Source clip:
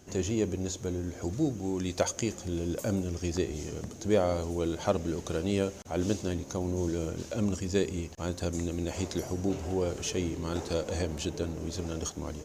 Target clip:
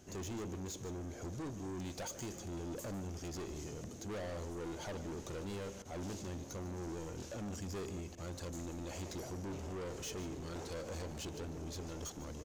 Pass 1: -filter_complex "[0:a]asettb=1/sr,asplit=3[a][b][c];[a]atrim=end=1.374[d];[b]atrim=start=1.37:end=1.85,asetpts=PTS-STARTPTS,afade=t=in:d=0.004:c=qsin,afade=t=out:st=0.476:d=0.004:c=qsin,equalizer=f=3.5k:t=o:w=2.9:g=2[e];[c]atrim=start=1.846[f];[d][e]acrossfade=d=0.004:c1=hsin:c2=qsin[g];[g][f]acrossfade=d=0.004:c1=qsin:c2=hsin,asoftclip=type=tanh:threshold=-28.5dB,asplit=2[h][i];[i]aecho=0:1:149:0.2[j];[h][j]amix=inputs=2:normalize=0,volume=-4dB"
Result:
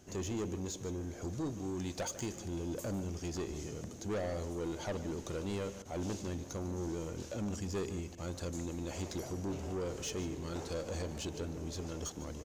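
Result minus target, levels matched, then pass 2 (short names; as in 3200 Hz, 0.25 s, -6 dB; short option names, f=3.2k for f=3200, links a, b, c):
soft clip: distortion -4 dB
-filter_complex "[0:a]asettb=1/sr,asplit=3[a][b][c];[a]atrim=end=1.374[d];[b]atrim=start=1.37:end=1.85,asetpts=PTS-STARTPTS,afade=t=in:d=0.004:c=qsin,afade=t=out:st=0.476:d=0.004:c=qsin,equalizer=f=3.5k:t=o:w=2.9:g=2[e];[c]atrim=start=1.846[f];[d][e]acrossfade=d=0.004:c1=hsin:c2=qsin[g];[g][f]acrossfade=d=0.004:c1=qsin:c2=hsin,asoftclip=type=tanh:threshold=-36dB,asplit=2[h][i];[i]aecho=0:1:149:0.2[j];[h][j]amix=inputs=2:normalize=0,volume=-4dB"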